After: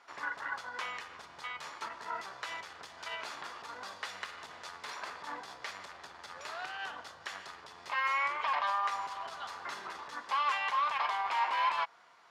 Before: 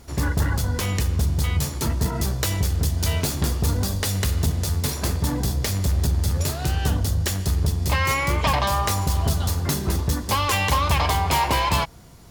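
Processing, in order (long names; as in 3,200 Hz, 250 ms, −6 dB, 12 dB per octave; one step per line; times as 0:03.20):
brickwall limiter −17.5 dBFS, peak gain reduction 9.5 dB
four-pole ladder band-pass 1,500 Hz, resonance 25%
level +8.5 dB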